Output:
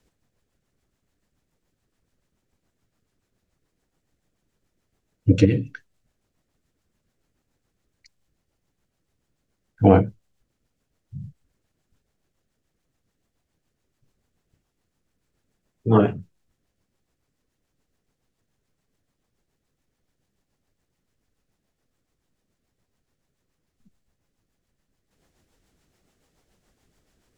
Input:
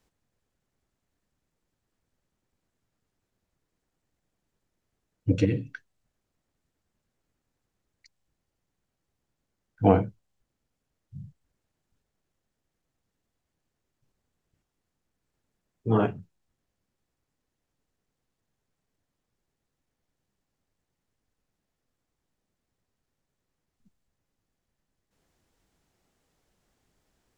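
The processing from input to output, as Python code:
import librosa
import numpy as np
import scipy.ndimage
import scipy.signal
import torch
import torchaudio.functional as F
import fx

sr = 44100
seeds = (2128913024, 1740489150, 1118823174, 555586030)

y = fx.rotary(x, sr, hz=7.0)
y = F.gain(torch.from_numpy(y), 8.0).numpy()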